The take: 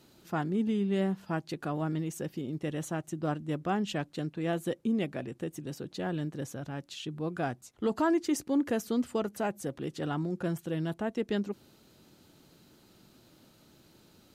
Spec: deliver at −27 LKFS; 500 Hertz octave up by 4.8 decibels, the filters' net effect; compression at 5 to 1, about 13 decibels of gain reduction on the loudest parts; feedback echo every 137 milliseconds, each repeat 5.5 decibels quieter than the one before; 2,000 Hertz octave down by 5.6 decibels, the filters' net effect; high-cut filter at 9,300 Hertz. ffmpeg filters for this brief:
ffmpeg -i in.wav -af "lowpass=9300,equalizer=frequency=500:width_type=o:gain=6.5,equalizer=frequency=2000:width_type=o:gain=-8.5,acompressor=threshold=-36dB:ratio=5,aecho=1:1:137|274|411|548|685|822|959:0.531|0.281|0.149|0.079|0.0419|0.0222|0.0118,volume=12dB" out.wav

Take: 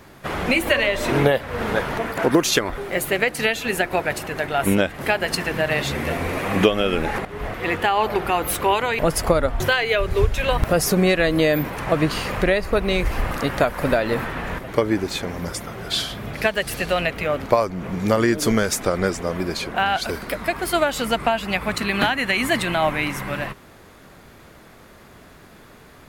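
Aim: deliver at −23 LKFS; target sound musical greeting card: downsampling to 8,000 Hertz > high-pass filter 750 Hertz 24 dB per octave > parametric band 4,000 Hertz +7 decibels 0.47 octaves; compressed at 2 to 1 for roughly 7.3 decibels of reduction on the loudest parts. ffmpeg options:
ffmpeg -i in.wav -af "acompressor=threshold=-25dB:ratio=2,aresample=8000,aresample=44100,highpass=frequency=750:width=0.5412,highpass=frequency=750:width=1.3066,equalizer=frequency=4000:width_type=o:width=0.47:gain=7,volume=6.5dB" out.wav

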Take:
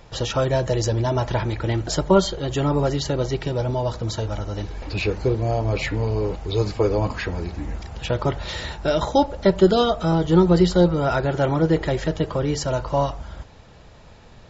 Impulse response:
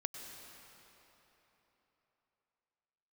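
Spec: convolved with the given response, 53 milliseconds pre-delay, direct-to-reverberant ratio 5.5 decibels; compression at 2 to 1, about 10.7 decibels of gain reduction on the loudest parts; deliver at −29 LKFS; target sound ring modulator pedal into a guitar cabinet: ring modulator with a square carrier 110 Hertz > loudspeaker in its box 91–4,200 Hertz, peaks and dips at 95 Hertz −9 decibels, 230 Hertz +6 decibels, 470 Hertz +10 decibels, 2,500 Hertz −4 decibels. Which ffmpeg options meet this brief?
-filter_complex "[0:a]acompressor=threshold=-31dB:ratio=2,asplit=2[link_01][link_02];[1:a]atrim=start_sample=2205,adelay=53[link_03];[link_02][link_03]afir=irnorm=-1:irlink=0,volume=-5dB[link_04];[link_01][link_04]amix=inputs=2:normalize=0,aeval=exprs='val(0)*sgn(sin(2*PI*110*n/s))':channel_layout=same,highpass=91,equalizer=frequency=95:width_type=q:width=4:gain=-9,equalizer=frequency=230:width_type=q:width=4:gain=6,equalizer=frequency=470:width_type=q:width=4:gain=10,equalizer=frequency=2500:width_type=q:width=4:gain=-4,lowpass=frequency=4200:width=0.5412,lowpass=frequency=4200:width=1.3066,volume=-3.5dB"

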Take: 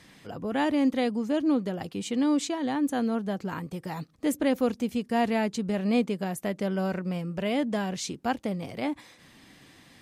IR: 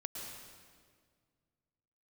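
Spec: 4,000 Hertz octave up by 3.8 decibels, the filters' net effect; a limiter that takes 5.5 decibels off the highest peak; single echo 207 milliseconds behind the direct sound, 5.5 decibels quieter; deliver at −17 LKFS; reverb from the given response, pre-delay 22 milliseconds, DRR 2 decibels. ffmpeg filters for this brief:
-filter_complex "[0:a]equalizer=frequency=4000:width_type=o:gain=5,alimiter=limit=-20dB:level=0:latency=1,aecho=1:1:207:0.531,asplit=2[link_01][link_02];[1:a]atrim=start_sample=2205,adelay=22[link_03];[link_02][link_03]afir=irnorm=-1:irlink=0,volume=-1.5dB[link_04];[link_01][link_04]amix=inputs=2:normalize=0,volume=9.5dB"

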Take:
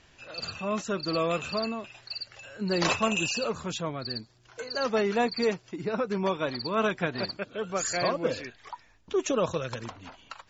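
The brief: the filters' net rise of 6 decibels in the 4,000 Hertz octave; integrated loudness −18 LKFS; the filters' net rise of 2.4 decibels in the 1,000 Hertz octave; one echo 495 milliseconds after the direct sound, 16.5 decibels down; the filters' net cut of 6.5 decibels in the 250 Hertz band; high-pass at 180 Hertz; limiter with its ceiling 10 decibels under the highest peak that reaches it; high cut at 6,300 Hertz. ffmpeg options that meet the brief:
ffmpeg -i in.wav -af "highpass=180,lowpass=6300,equalizer=frequency=250:width_type=o:gain=-7.5,equalizer=frequency=1000:width_type=o:gain=3,equalizer=frequency=4000:width_type=o:gain=8,alimiter=limit=-20.5dB:level=0:latency=1,aecho=1:1:495:0.15,volume=13dB" out.wav

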